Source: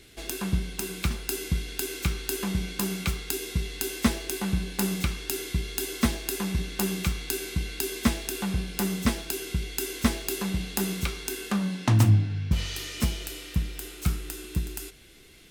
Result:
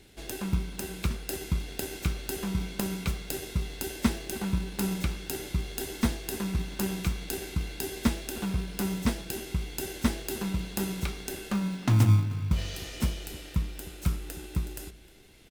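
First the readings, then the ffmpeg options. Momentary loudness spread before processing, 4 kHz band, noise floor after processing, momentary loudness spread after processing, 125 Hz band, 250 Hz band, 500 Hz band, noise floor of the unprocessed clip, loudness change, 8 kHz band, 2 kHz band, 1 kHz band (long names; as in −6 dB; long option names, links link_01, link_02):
6 LU, −5.0 dB, −47 dBFS, 6 LU, −1.5 dB, −2.0 dB, −2.5 dB, −45 dBFS, −2.5 dB, −5.5 dB, −4.5 dB, −3.0 dB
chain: -filter_complex "[0:a]asplit=2[link_01][link_02];[link_02]acrusher=samples=38:mix=1:aa=0.000001,volume=-4.5dB[link_03];[link_01][link_03]amix=inputs=2:normalize=0,asplit=2[link_04][link_05];[link_05]adelay=309,volume=-19dB,highshelf=frequency=4000:gain=-6.95[link_06];[link_04][link_06]amix=inputs=2:normalize=0,volume=-5.5dB"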